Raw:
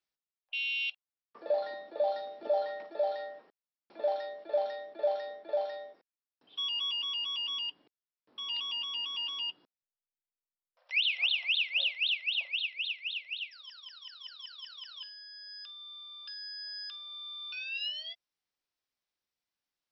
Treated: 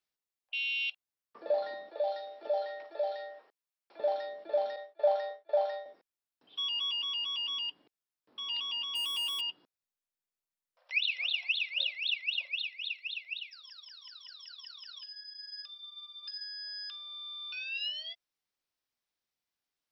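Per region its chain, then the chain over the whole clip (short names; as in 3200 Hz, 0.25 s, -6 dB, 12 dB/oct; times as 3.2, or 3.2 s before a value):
1.89–4 HPF 480 Hz + dynamic EQ 1100 Hz, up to -6 dB, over -50 dBFS, Q 2
4.76–5.86 HPF 430 Hz 24 dB/oct + expander -41 dBFS + dynamic EQ 910 Hz, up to +5 dB, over -44 dBFS, Q 0.82
8.95–9.41 switching spikes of -44.5 dBFS + sample leveller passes 1
10.93–16.44 high shelf 3600 Hz +9.5 dB + notch 3100 Hz, Q 7.1 + cascading flanger rising 1.6 Hz
whole clip: dry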